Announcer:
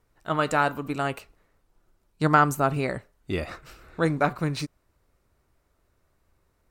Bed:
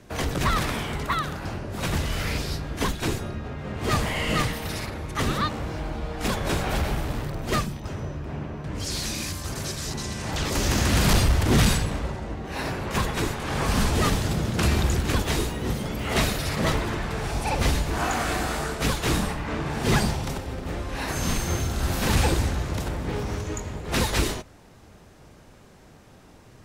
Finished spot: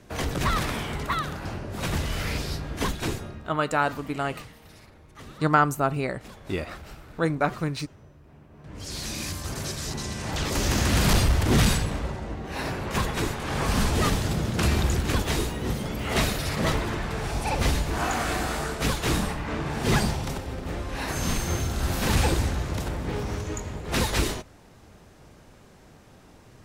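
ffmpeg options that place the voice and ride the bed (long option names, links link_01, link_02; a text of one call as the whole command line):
ffmpeg -i stem1.wav -i stem2.wav -filter_complex "[0:a]adelay=3200,volume=-1dB[link_01];[1:a]volume=16.5dB,afade=type=out:start_time=3.01:duration=0.61:silence=0.133352,afade=type=in:start_time=8.49:duration=0.81:silence=0.125893[link_02];[link_01][link_02]amix=inputs=2:normalize=0" out.wav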